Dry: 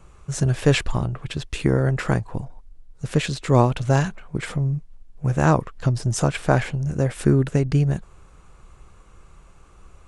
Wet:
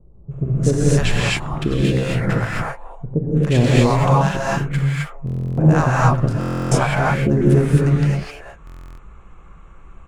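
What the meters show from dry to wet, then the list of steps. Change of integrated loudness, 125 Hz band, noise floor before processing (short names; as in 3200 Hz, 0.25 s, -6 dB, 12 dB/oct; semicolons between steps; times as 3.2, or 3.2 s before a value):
+4.0 dB, +4.5 dB, -50 dBFS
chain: Wiener smoothing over 9 samples; in parallel at -3 dB: level quantiser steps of 17 dB; on the sum: bands offset in time lows, highs 0.31 s, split 590 Hz; non-linear reverb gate 0.29 s rising, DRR -6 dB; stuck buffer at 5.25/6.39/8.65, samples 1024, times 13; gain -3 dB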